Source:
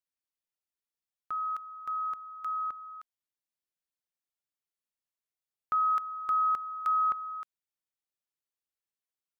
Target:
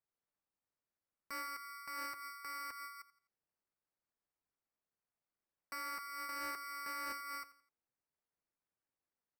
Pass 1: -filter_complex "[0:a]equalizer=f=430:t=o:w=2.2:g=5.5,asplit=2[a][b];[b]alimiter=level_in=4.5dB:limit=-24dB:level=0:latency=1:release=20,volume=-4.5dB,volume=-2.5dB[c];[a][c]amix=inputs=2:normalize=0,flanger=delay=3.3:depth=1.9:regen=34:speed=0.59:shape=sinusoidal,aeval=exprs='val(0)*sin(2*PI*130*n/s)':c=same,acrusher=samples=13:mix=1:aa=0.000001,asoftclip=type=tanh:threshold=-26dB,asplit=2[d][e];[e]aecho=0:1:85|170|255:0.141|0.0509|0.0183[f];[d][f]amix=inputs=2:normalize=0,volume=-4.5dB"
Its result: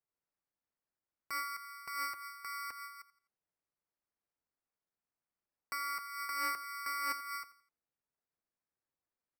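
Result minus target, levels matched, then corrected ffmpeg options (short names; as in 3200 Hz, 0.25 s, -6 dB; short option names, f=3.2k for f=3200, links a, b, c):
soft clip: distortion -8 dB
-filter_complex "[0:a]equalizer=f=430:t=o:w=2.2:g=5.5,asplit=2[a][b];[b]alimiter=level_in=4.5dB:limit=-24dB:level=0:latency=1:release=20,volume=-4.5dB,volume=-2.5dB[c];[a][c]amix=inputs=2:normalize=0,flanger=delay=3.3:depth=1.9:regen=34:speed=0.59:shape=sinusoidal,aeval=exprs='val(0)*sin(2*PI*130*n/s)':c=same,acrusher=samples=13:mix=1:aa=0.000001,asoftclip=type=tanh:threshold=-36dB,asplit=2[d][e];[e]aecho=0:1:85|170|255:0.141|0.0509|0.0183[f];[d][f]amix=inputs=2:normalize=0,volume=-4.5dB"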